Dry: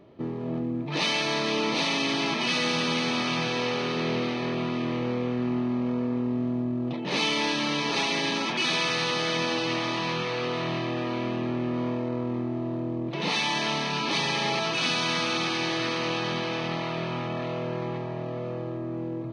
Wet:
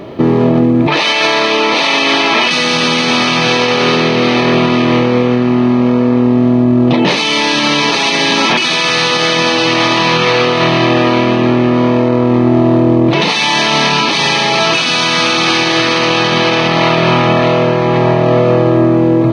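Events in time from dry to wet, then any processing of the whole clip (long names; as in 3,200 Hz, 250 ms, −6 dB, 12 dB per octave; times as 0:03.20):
0:00.87–0:02.51: bass and treble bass −12 dB, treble −7 dB
whole clip: low-shelf EQ 340 Hz −4 dB; compressor whose output falls as the input rises −33 dBFS, ratio −1; boost into a limiter +24.5 dB; level −1 dB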